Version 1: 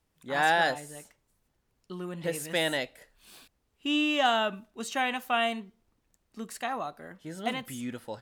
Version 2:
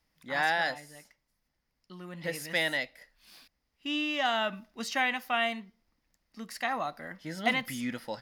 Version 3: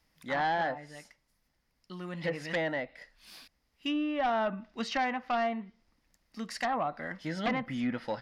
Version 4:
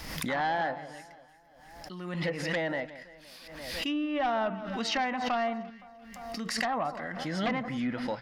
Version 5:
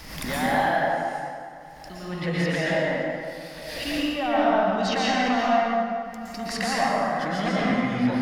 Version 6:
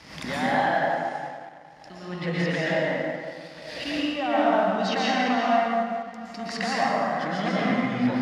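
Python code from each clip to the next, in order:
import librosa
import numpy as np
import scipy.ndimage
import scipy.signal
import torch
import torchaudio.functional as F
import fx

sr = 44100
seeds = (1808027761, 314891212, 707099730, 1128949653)

y1 = fx.graphic_eq_31(x, sr, hz=(100, 400, 2000, 5000, 8000), db=(-12, -9, 8, 10, -8))
y1 = fx.rider(y1, sr, range_db=4, speed_s=0.5)
y1 = y1 * librosa.db_to_amplitude(-1.5)
y2 = fx.env_lowpass_down(y1, sr, base_hz=1200.0, full_db=-28.5)
y2 = fx.fold_sine(y2, sr, drive_db=8, ceiling_db=-16.0)
y2 = y2 * librosa.db_to_amplitude(-8.0)
y3 = fx.echo_alternate(y2, sr, ms=172, hz=1500.0, feedback_pct=58, wet_db=-13.5)
y3 = fx.pre_swell(y3, sr, db_per_s=43.0)
y4 = fx.rev_plate(y3, sr, seeds[0], rt60_s=2.1, hf_ratio=0.55, predelay_ms=105, drr_db=-6.5)
y5 = fx.law_mismatch(y4, sr, coded='A')
y5 = fx.bandpass_edges(y5, sr, low_hz=100.0, high_hz=6000.0)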